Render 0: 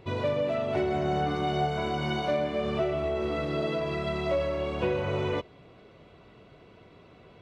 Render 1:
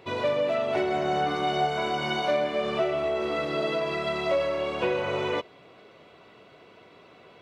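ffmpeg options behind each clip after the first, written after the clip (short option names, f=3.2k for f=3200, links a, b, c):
-af "highpass=f=490:p=1,volume=5dB"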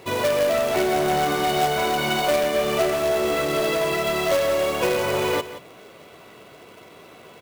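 -af "asoftclip=type=tanh:threshold=-19.5dB,acrusher=bits=2:mode=log:mix=0:aa=0.000001,aecho=1:1:175:0.2,volume=6dB"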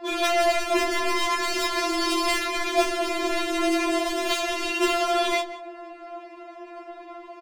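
-filter_complex "[0:a]adynamicsmooth=sensitivity=3:basefreq=2.3k,asplit=2[a][b];[b]adelay=19,volume=-6dB[c];[a][c]amix=inputs=2:normalize=0,afftfilt=real='re*4*eq(mod(b,16),0)':imag='im*4*eq(mod(b,16),0)':win_size=2048:overlap=0.75,volume=8.5dB"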